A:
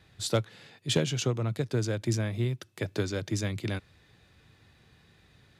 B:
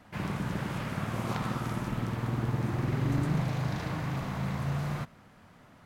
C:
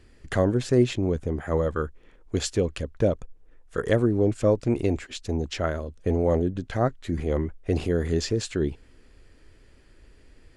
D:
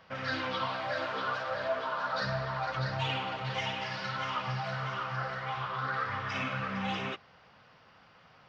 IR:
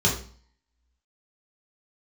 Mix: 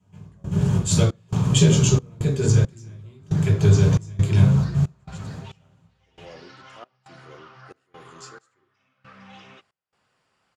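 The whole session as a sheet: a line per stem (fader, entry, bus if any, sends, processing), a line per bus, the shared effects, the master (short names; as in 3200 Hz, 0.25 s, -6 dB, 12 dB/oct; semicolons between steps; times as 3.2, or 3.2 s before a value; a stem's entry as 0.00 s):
-2.5 dB, 0.65 s, send -8.5 dB, dry
+3.0 dB, 0.00 s, send -5.5 dB, graphic EQ 125/500/2000 Hz +6/+3/-7 dB; compressor 12:1, threshold -35 dBFS, peak gain reduction 16 dB; step gate "xx..xx.x..xx.xx" 117 bpm -12 dB
-17.0 dB, 0.00 s, send -22 dB, HPF 390 Hz 12 dB/oct
-12.5 dB, 2.45 s, no send, dry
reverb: on, RT60 0.45 s, pre-delay 3 ms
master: bell 7700 Hz +8.5 dB 1.2 oct; step gate "..xxx.xxx.xx." 68 bpm -24 dB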